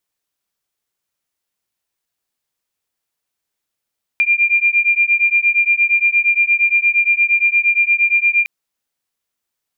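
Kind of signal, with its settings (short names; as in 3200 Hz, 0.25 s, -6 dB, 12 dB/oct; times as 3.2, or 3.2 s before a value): beating tones 2390 Hz, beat 8.6 Hz, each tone -14.5 dBFS 4.26 s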